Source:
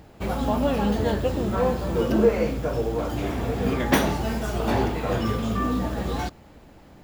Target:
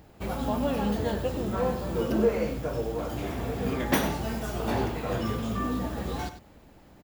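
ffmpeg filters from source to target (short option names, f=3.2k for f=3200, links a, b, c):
-af "highshelf=f=11k:g=6.5,aecho=1:1:97:0.251,volume=-5dB"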